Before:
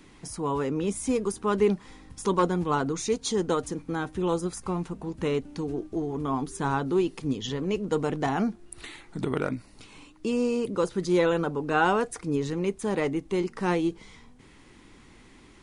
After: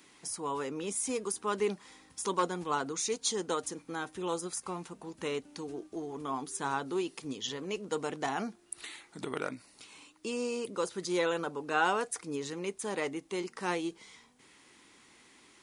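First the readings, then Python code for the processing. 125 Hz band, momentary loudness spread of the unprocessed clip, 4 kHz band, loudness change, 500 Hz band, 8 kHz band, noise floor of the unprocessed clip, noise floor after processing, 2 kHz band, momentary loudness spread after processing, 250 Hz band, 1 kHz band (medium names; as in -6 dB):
-14.5 dB, 9 LU, -1.0 dB, -7.0 dB, -7.5 dB, +1.5 dB, -53 dBFS, -62 dBFS, -3.5 dB, 12 LU, -10.5 dB, -5.0 dB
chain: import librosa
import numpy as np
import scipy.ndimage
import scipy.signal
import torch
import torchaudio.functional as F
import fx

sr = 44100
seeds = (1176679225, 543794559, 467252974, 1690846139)

y = fx.highpass(x, sr, hz=510.0, slope=6)
y = fx.high_shelf(y, sr, hz=4400.0, db=7.5)
y = y * 10.0 ** (-4.0 / 20.0)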